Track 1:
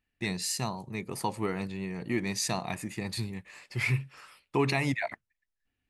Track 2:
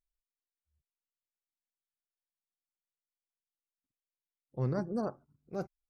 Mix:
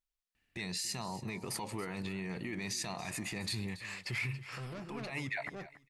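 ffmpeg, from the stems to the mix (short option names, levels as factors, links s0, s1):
-filter_complex "[0:a]acompressor=threshold=0.02:ratio=3,alimiter=level_in=2.99:limit=0.0631:level=0:latency=1:release=29,volume=0.335,adelay=350,volume=1.26,asplit=2[s0][s1];[s1]volume=0.158[s2];[1:a]asoftclip=type=tanh:threshold=0.0119,volume=0.668,asplit=2[s3][s4];[s4]apad=whole_len=275304[s5];[s0][s5]sidechaincompress=threshold=0.00251:ratio=4:attack=16:release=105[s6];[s2]aecho=0:1:280|560|840|1120:1|0.24|0.0576|0.0138[s7];[s6][s3][s7]amix=inputs=3:normalize=0,equalizer=f=3000:w=0.38:g=5"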